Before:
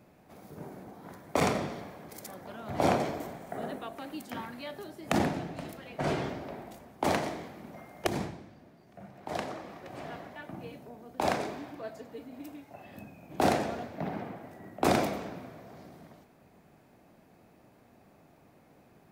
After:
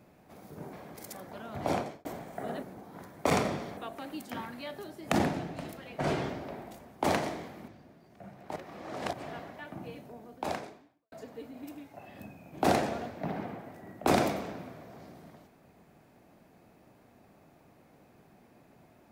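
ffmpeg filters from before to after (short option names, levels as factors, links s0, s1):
-filter_complex "[0:a]asplit=9[s0][s1][s2][s3][s4][s5][s6][s7][s8];[s0]atrim=end=0.732[s9];[s1]atrim=start=1.868:end=3.19,asetpts=PTS-STARTPTS,afade=t=out:st=0.762:d=0.56[s10];[s2]atrim=start=3.19:end=3.772,asetpts=PTS-STARTPTS,afade=t=in:d=0.004:c=hsin[s11];[s3]atrim=start=0.728:end=1.872[s12];[s4]atrim=start=3.768:end=7.682[s13];[s5]atrim=start=8.448:end=9.332[s14];[s6]atrim=start=9.328:end=9.902,asetpts=PTS-STARTPTS,areverse[s15];[s7]atrim=start=9.898:end=11.89,asetpts=PTS-STARTPTS,afade=t=out:st=1.132:d=0.86:c=qua[s16];[s8]atrim=start=11.89,asetpts=PTS-STARTPTS,afade=t=in:d=0.004:c=hsin[s17];[s10][s11]concat=n=2:v=0:a=1[s18];[s9][s18]acrossfade=d=0.004:c1=hsin:c2=hsin[s19];[s19][s12]acrossfade=d=0.004:c1=hsin:c2=hsin[s20];[s20][s13]acrossfade=d=0.004:c1=hsin:c2=hsin[s21];[s21][s14]acrossfade=d=0.004:c1=hsin:c2=hsin[s22];[s22][s15]acrossfade=d=0.004:c1=hsin:c2=hsin[s23];[s16][s17]concat=n=2:v=0:a=1[s24];[s23][s24]acrossfade=d=0.004:c1=hsin:c2=hsin"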